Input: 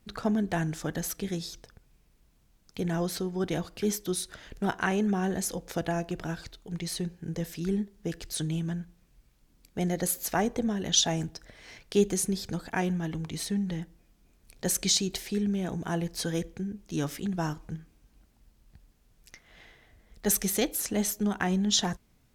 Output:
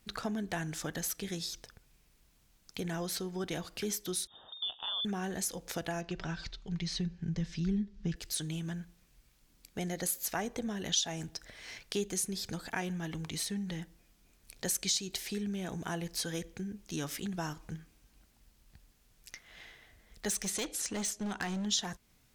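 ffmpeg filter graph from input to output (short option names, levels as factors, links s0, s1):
-filter_complex "[0:a]asettb=1/sr,asplit=3[s0][s1][s2];[s0]atrim=end=4.274[s3];[s1]atrim=start=4.27:end=5.05,asetpts=PTS-STARTPTS,afade=t=in:d=0.004:c=qsin,afade=t=out:st=0.776:d=0.004:c=qsin,aemphasis=mode=production:type=50fm,lowpass=f=3100:t=q:w=0.5098,lowpass=f=3100:t=q:w=0.6013,lowpass=f=3100:t=q:w=0.9,lowpass=f=3100:t=q:w=2.563,afreqshift=-3700,asuperstop=centerf=2200:order=4:qfactor=0.76[s4];[s2]atrim=start=5.046[s5];[s3][s4]acrossfade=d=0.004:c1=hsin:c2=qsin[s6];[s6][s5]acrossfade=d=0.004:c1=qsin:c2=hsin,asettb=1/sr,asplit=3[s7][s8][s9];[s7]atrim=end=6.014[s10];[s8]atrim=start=6.01:end=8.16,asetpts=PTS-STARTPTS,afade=t=in:d=0.004:c=qsin,afade=t=out:st=2.146:d=0.004:c=qsin,lowpass=f=5900:w=0.5412,lowpass=f=5900:w=1.3066,asubboost=boost=9:cutoff=200,aecho=1:1:5.2:0.38,atrim=end_sample=94815[s11];[s9]atrim=start=8.156[s12];[s10][s11]acrossfade=d=0.004:c1=hsin:c2=qsin[s13];[s13][s12]acrossfade=d=0.004:c1=qsin:c2=hsin,asettb=1/sr,asplit=3[s14][s15][s16];[s14]atrim=end=20.304[s17];[s15]atrim=start=20.3:end=21.66,asetpts=PTS-STARTPTS,afade=t=in:d=0.004:c=qsin,afade=t=out:st=1.356:d=0.004:c=qsin,lowpass=f=9200:w=0.5412,lowpass=f=9200:w=1.3066,volume=20,asoftclip=hard,volume=0.0501[s18];[s16]atrim=start=21.656[s19];[s17][s18]acrossfade=d=0.004:c1=hsin:c2=qsin[s20];[s20][s19]acrossfade=d=0.004:c1=qsin:c2=hsin,tiltshelf=f=1100:g=-4,acompressor=threshold=0.0158:ratio=2"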